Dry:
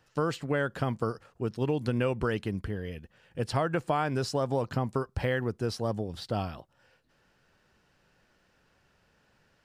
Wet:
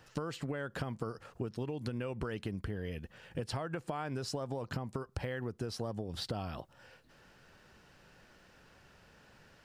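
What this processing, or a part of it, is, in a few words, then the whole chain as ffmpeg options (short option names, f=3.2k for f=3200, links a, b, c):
serial compression, leveller first: -af "acompressor=threshold=-31dB:ratio=3,acompressor=threshold=-42dB:ratio=5,volume=6.5dB"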